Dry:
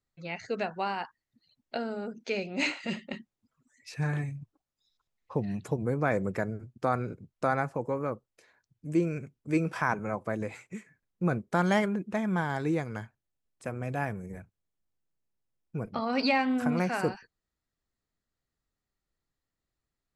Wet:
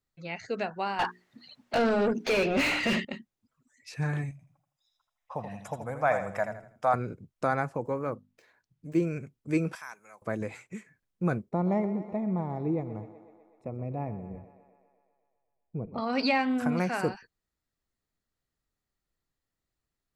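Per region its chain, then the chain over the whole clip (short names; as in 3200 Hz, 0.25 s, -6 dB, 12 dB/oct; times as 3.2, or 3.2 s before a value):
0.99–3.05 notches 60/120/180/240/300/360/420 Hz + dynamic EQ 950 Hz, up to -5 dB, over -48 dBFS, Q 0.72 + overdrive pedal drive 32 dB, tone 1500 Hz, clips at -15.5 dBFS
4.31–6.94 Butterworth band-stop 4300 Hz, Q 6.6 + resonant low shelf 510 Hz -8.5 dB, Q 3 + feedback echo 81 ms, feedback 34%, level -8 dB
7.8–9.02 median filter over 5 samples + notches 50/100/150/200/250/300 Hz
9.75–10.22 HPF 41 Hz + differentiator + notch 3000 Hz, Q 11
11.49–15.98 running mean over 28 samples + thinning echo 0.125 s, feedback 71%, high-pass 210 Hz, level -13 dB
whole clip: dry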